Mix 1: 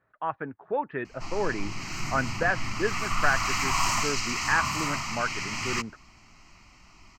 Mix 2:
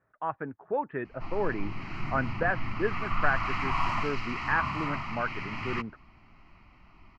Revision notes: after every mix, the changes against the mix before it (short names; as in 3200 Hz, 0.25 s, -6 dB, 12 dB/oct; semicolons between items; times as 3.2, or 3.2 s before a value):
master: add air absorption 410 m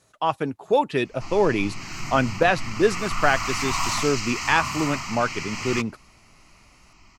speech: remove ladder low-pass 1900 Hz, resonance 55%; master: remove air absorption 410 m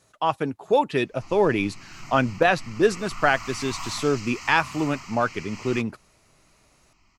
background -9.5 dB